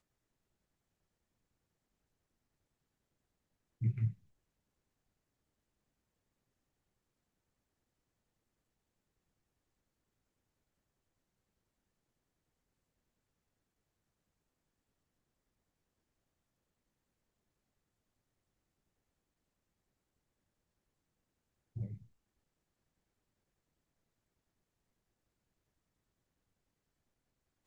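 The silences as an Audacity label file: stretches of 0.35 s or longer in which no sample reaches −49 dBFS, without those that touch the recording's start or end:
4.130000	21.760000	silence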